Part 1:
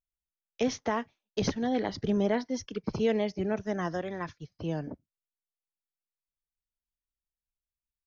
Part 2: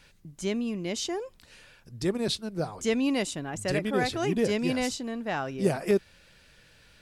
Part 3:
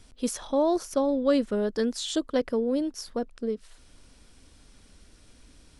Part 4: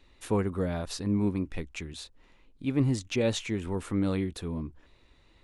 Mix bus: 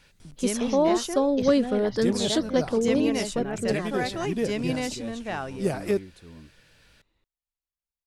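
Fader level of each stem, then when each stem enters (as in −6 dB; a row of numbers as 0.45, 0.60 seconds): −3.5, −1.0, +2.0, −12.5 decibels; 0.00, 0.00, 0.20, 1.80 seconds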